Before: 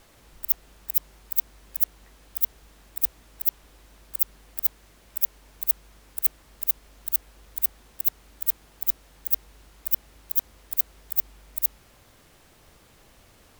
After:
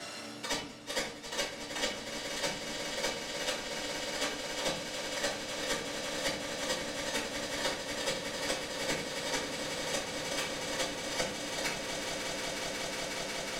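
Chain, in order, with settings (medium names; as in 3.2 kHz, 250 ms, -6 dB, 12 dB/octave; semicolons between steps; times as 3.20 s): bit-reversed sample order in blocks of 256 samples; Bessel high-pass 290 Hz, order 4; peaking EQ 7.8 kHz +8 dB 2.5 oct; band-stop 2.5 kHz, Q 21; reverse; compression 4:1, threshold -30 dBFS, peak gain reduction 16.5 dB; reverse; tape spacing loss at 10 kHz 25 dB; echo with a slow build-up 182 ms, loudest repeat 8, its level -13 dB; simulated room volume 36 m³, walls mixed, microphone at 2.4 m; three bands compressed up and down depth 70%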